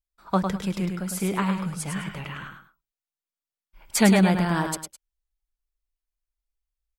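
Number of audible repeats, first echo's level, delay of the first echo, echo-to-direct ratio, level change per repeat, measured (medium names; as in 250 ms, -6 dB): 2, -6.0 dB, 104 ms, -5.5 dB, -11.5 dB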